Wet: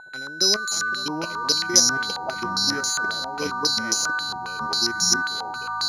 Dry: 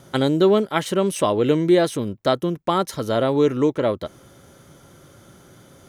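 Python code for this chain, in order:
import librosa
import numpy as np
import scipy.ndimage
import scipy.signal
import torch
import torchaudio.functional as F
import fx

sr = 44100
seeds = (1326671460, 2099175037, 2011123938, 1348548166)

y = scipy.signal.sosfilt(scipy.signal.butter(2, 130.0, 'highpass', fs=sr, output='sos'), x)
y = fx.level_steps(y, sr, step_db=16)
y = y + 10.0 ** (-23.0 / 20.0) * np.sin(2.0 * np.pi * 1500.0 * np.arange(len(y)) / sr)
y = fx.echo_pitch(y, sr, ms=541, semitones=-4, count=3, db_per_echo=-3.0)
y = (np.kron(scipy.signal.resample_poly(y, 1, 8), np.eye(8)[0]) * 8)[:len(y)]
y = fx.filter_held_lowpass(y, sr, hz=7.4, low_hz=830.0, high_hz=6000.0)
y = y * librosa.db_to_amplitude(-11.5)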